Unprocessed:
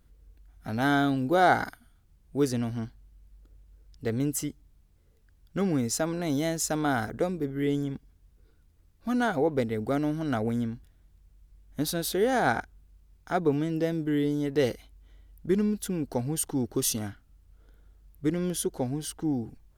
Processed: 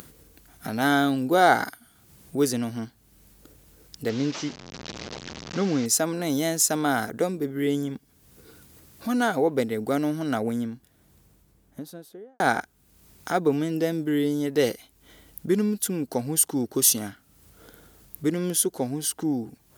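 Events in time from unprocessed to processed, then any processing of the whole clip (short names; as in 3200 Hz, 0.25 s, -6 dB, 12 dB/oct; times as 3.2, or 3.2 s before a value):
4.09–5.86 delta modulation 32 kbps, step -36 dBFS
10.15–12.4 studio fade out
whole clip: upward compressor, threshold -30 dBFS; HPF 160 Hz 12 dB/oct; high shelf 6100 Hz +9.5 dB; gain +3 dB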